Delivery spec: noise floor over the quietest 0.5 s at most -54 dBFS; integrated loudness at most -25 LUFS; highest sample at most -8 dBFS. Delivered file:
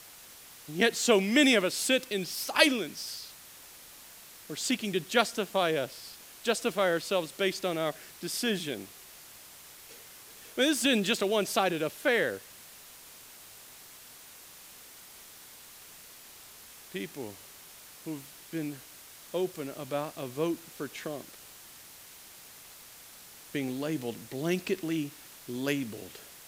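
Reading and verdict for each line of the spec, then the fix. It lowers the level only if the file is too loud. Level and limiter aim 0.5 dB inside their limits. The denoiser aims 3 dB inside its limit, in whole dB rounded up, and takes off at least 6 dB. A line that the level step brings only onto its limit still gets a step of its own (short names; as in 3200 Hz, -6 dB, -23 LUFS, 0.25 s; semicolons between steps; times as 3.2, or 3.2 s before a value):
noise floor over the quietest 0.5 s -51 dBFS: fail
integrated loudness -30.0 LUFS: OK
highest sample -7.0 dBFS: fail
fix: denoiser 6 dB, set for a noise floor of -51 dBFS; limiter -8.5 dBFS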